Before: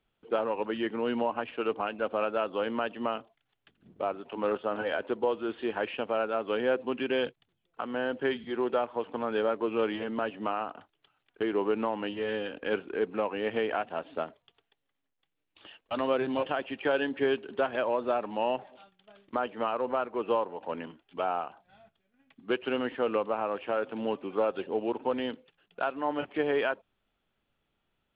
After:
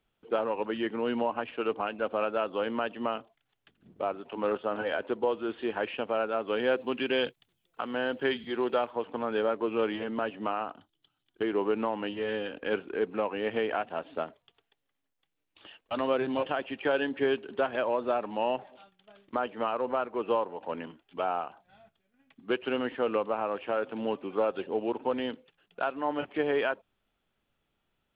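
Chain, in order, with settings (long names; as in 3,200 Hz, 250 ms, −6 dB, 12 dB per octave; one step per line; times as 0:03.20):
0:06.57–0:08.91: high-shelf EQ 3,600 Hz +10.5 dB
0:10.74–0:11.41: gain on a spectral selection 380–2,900 Hz −9 dB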